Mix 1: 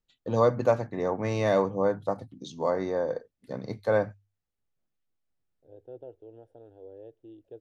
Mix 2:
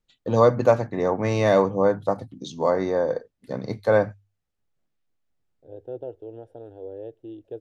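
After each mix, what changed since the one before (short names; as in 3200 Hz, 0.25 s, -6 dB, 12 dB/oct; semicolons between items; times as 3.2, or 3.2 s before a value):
first voice +5.5 dB; second voice +9.5 dB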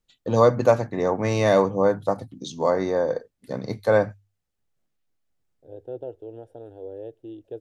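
master: add high shelf 7100 Hz +9 dB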